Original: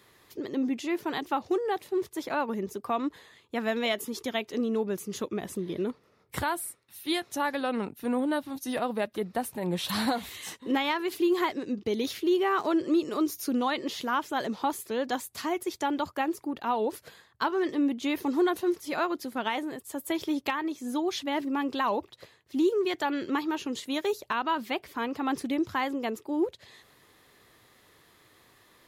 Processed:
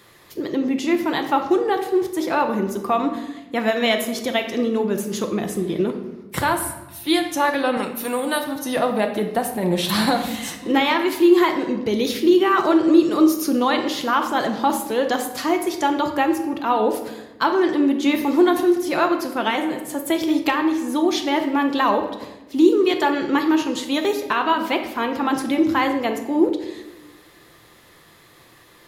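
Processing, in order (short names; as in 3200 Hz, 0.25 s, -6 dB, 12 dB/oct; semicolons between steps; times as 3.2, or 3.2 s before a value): 7.77–8.44 tilt +3.5 dB/oct; shoebox room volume 560 m³, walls mixed, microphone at 0.79 m; gain +8 dB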